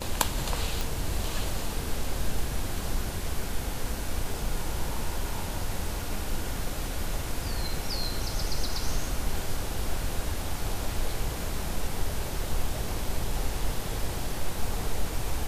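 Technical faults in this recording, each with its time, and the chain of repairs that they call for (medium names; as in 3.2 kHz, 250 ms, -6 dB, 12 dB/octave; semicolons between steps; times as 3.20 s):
0.81 s: pop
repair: de-click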